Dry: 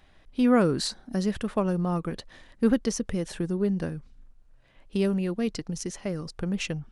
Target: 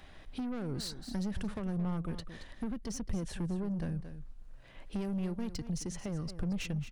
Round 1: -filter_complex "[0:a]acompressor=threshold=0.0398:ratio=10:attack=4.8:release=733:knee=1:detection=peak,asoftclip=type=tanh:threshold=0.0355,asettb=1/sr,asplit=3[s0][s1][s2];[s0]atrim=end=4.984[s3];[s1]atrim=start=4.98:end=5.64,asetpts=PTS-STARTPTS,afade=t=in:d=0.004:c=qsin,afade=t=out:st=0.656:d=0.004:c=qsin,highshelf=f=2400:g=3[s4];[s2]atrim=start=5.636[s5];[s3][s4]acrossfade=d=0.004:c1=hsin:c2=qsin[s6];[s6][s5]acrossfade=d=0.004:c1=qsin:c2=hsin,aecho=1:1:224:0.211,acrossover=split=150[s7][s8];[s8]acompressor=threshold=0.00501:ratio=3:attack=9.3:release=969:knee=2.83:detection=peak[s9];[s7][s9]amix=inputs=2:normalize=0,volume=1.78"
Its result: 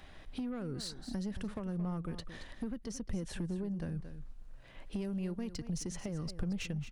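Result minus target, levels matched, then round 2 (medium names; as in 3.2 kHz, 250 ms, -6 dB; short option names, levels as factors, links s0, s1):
compression: peak gain reduction +6.5 dB
-filter_complex "[0:a]acompressor=threshold=0.0891:ratio=10:attack=4.8:release=733:knee=1:detection=peak,asoftclip=type=tanh:threshold=0.0355,asettb=1/sr,asplit=3[s0][s1][s2];[s0]atrim=end=4.984[s3];[s1]atrim=start=4.98:end=5.64,asetpts=PTS-STARTPTS,afade=t=in:d=0.004:c=qsin,afade=t=out:st=0.656:d=0.004:c=qsin,highshelf=f=2400:g=3[s4];[s2]atrim=start=5.636[s5];[s3][s4]acrossfade=d=0.004:c1=hsin:c2=qsin[s6];[s6][s5]acrossfade=d=0.004:c1=qsin:c2=hsin,aecho=1:1:224:0.211,acrossover=split=150[s7][s8];[s8]acompressor=threshold=0.00501:ratio=3:attack=9.3:release=969:knee=2.83:detection=peak[s9];[s7][s9]amix=inputs=2:normalize=0,volume=1.78"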